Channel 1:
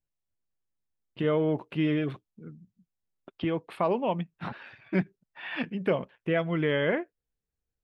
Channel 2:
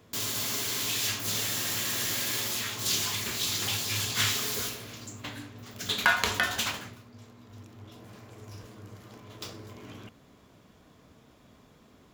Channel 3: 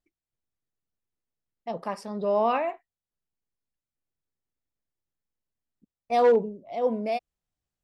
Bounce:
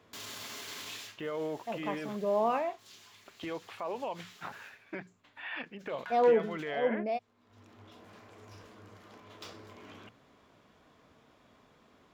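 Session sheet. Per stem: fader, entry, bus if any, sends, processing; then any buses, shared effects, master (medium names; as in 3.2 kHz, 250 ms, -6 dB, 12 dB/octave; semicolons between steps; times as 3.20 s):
+0.5 dB, 0.00 s, bus A, no send, peaking EQ 180 Hz -7 dB 1.6 oct; expander -52 dBFS
+1.0 dB, 0.00 s, bus A, no send, auto duck -21 dB, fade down 0.25 s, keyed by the first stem
-4.5 dB, 0.00 s, no bus, no send, none
bus A: 0.0 dB, bass shelf 410 Hz -10.5 dB; peak limiter -27 dBFS, peak gain reduction 9.5 dB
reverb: none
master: low-pass 2.4 kHz 6 dB/octave; hum notches 60/120/180 Hz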